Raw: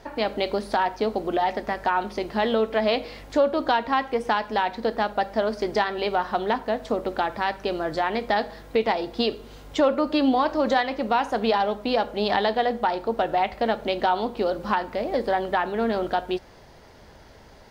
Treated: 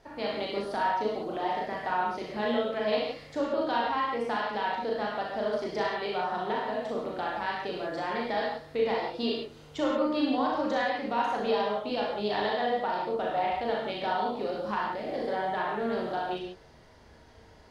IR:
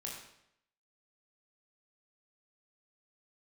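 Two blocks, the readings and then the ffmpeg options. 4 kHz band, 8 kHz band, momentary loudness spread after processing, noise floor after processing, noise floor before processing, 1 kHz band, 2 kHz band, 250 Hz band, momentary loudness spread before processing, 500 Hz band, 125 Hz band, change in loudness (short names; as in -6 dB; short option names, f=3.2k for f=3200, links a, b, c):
-5.5 dB, n/a, 5 LU, -54 dBFS, -49 dBFS, -5.5 dB, -5.0 dB, -6.0 dB, 5 LU, -5.5 dB, -6.0 dB, -5.5 dB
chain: -filter_complex "[1:a]atrim=start_sample=2205,afade=t=out:st=0.15:d=0.01,atrim=end_sample=7056,asetrate=24255,aresample=44100[a];[0:a][a]afir=irnorm=-1:irlink=0,volume=-8.5dB"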